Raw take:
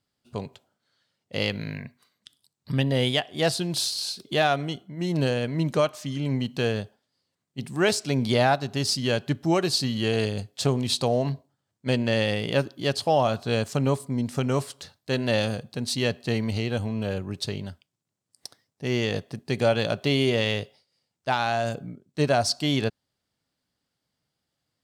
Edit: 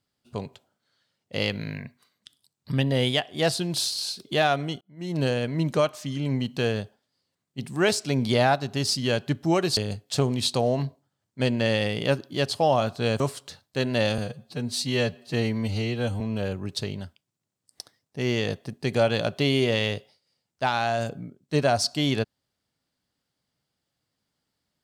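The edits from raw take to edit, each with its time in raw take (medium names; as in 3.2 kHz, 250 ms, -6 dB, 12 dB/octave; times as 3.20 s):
4.81–5.27 s: fade in
9.77–10.24 s: delete
13.67–14.53 s: delete
15.51–16.86 s: stretch 1.5×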